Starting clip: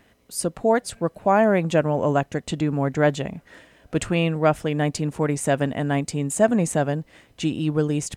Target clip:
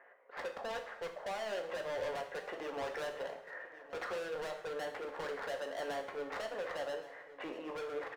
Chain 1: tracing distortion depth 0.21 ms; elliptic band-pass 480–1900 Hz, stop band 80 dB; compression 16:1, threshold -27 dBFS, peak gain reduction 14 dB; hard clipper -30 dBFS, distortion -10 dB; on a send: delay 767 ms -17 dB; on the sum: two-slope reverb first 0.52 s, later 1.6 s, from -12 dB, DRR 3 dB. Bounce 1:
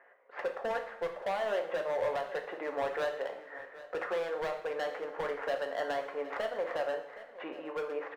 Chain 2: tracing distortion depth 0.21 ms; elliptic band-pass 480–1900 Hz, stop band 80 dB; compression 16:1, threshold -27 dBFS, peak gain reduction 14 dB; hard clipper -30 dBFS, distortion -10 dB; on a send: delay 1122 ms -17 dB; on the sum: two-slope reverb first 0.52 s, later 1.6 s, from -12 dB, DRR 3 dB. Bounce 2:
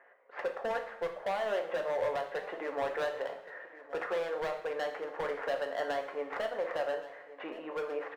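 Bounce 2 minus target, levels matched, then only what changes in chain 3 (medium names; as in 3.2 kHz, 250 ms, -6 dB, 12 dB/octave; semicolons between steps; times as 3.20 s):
hard clipper: distortion -6 dB
change: hard clipper -38.5 dBFS, distortion -4 dB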